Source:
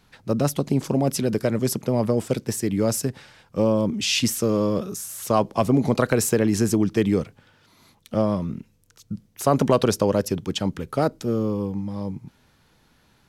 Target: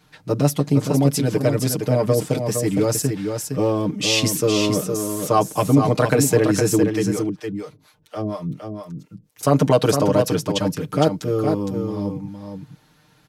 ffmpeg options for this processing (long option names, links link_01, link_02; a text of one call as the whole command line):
ffmpeg -i in.wav -filter_complex "[0:a]highpass=44,aecho=1:1:6.6:0.96,asettb=1/sr,asplit=3[link_01][link_02][link_03];[link_01]atrim=end=6.834[link_04];[link_02]atrim=start=6.83:end=9.43,asetpts=PTS-STARTPTS,afade=type=in:duration=0.004:curve=qsin,afade=type=out:start_time=2.596:duration=0.004:curve=qsin,acrossover=split=480[link_05][link_06];[link_05]aeval=exprs='val(0)*(1-1/2+1/2*cos(2*PI*4.2*n/s))':channel_layout=same[link_07];[link_06]aeval=exprs='val(0)*(1-1/2-1/2*cos(2*PI*4.2*n/s))':channel_layout=same[link_08];[link_07][link_08]amix=inputs=2:normalize=0[link_09];[link_03]atrim=start=9.426[link_10];[link_04][link_09]acrossfade=duration=0.004:curve1=hsin:curve2=qsin[link_11];[link_11][link_10]acrossfade=duration=0.004:curve1=qsin:curve2=hsin,aecho=1:1:462:0.501" out.wav